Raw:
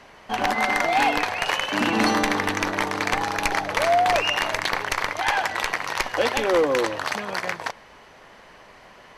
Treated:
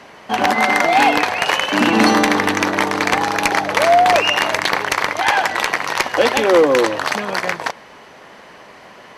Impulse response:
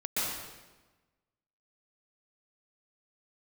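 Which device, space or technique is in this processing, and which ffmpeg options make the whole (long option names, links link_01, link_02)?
filter by subtraction: -filter_complex "[0:a]asplit=2[link_01][link_02];[link_02]lowpass=220,volume=-1[link_03];[link_01][link_03]amix=inputs=2:normalize=0,volume=6.5dB"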